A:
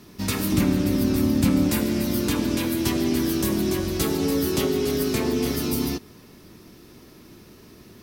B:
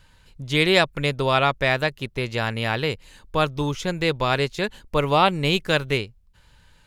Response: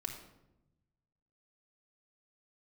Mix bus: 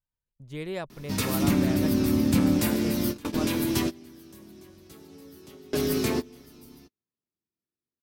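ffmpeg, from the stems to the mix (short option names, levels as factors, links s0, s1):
-filter_complex "[0:a]highpass=63,adelay=900,volume=0.794[s0];[1:a]equalizer=f=3600:w=0.47:g=-12,volume=0.224,asplit=3[s1][s2][s3];[s1]atrim=end=3.76,asetpts=PTS-STARTPTS,afade=t=out:st=3.756:d=0.004:c=hsin[s4];[s2]atrim=start=3.76:end=5.73,asetpts=PTS-STARTPTS,volume=0[s5];[s3]atrim=start=5.73,asetpts=PTS-STARTPTS,afade=t=in:d=0.004:c=hsin[s6];[s4][s5][s6]concat=n=3:v=0:a=1,asplit=2[s7][s8];[s8]apad=whole_len=393666[s9];[s0][s9]sidechaingate=range=0.0708:threshold=0.00112:ratio=16:detection=peak[s10];[s10][s7]amix=inputs=2:normalize=0,agate=range=0.0631:threshold=0.00251:ratio=16:detection=peak"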